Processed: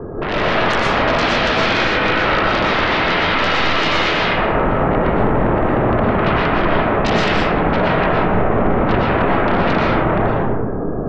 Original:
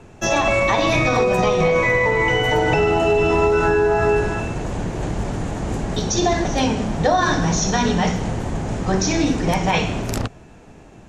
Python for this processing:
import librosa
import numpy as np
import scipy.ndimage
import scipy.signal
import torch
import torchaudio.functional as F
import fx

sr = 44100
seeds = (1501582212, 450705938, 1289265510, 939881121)

p1 = scipy.signal.medfilt(x, 25)
p2 = fx.over_compress(p1, sr, threshold_db=-29.0, ratio=-1.0)
p3 = p1 + F.gain(torch.from_numpy(p2), -1.0).numpy()
p4 = scipy.signal.sosfilt(scipy.signal.cheby1(6, 9, 1700.0, 'lowpass', fs=sr, output='sos'), p3)
p5 = fx.fold_sine(p4, sr, drive_db=18, ceiling_db=-9.0)
p6 = fx.rev_freeverb(p5, sr, rt60_s=1.7, hf_ratio=0.3, predelay_ms=80, drr_db=-5.0)
y = F.gain(torch.from_numpy(p6), -10.5).numpy()